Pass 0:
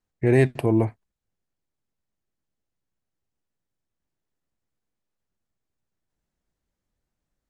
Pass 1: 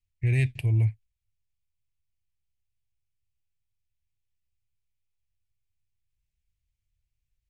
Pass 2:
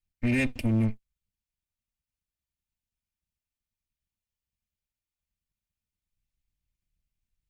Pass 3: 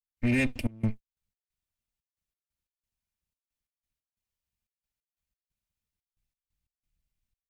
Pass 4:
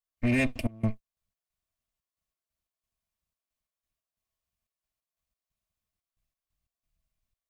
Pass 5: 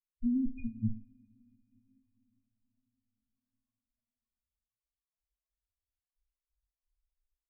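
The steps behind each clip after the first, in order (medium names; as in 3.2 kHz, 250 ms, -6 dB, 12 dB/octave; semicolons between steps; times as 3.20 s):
FFT filter 110 Hz 0 dB, 200 Hz -22 dB, 1.3 kHz -28 dB, 2.4 kHz -3 dB, 4 kHz -9 dB; trim +4.5 dB
comb filter that takes the minimum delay 3.3 ms; waveshaping leveller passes 1
trance gate ".xxx.x.x" 90 bpm -24 dB
small resonant body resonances 660/1100 Hz, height 11 dB, ringing for 45 ms
loudest bins only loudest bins 2; two-slope reverb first 0.5 s, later 4.6 s, from -28 dB, DRR 6.5 dB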